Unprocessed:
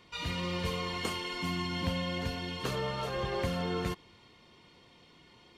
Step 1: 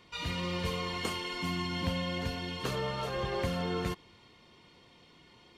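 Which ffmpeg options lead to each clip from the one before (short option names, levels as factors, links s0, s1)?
-af anull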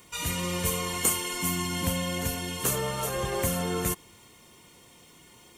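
-af "aexciter=amount=6.1:drive=8.9:freq=6600,volume=1.5"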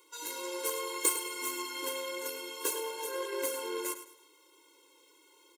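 -af "aeval=exprs='0.376*(cos(1*acos(clip(val(0)/0.376,-1,1)))-cos(1*PI/2))+0.0168*(cos(6*acos(clip(val(0)/0.376,-1,1)))-cos(6*PI/2))+0.0266*(cos(7*acos(clip(val(0)/0.376,-1,1)))-cos(7*PI/2))':c=same,aecho=1:1:105|210|315:0.251|0.0804|0.0257,afftfilt=real='re*eq(mod(floor(b*sr/1024/280),2),1)':imag='im*eq(mod(floor(b*sr/1024/280),2),1)':win_size=1024:overlap=0.75"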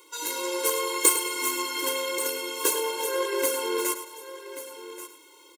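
-af "aecho=1:1:1133:0.211,volume=2.66"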